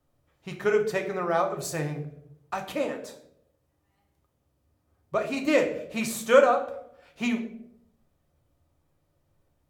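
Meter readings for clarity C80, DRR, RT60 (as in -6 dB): 13.0 dB, 3.0 dB, 0.75 s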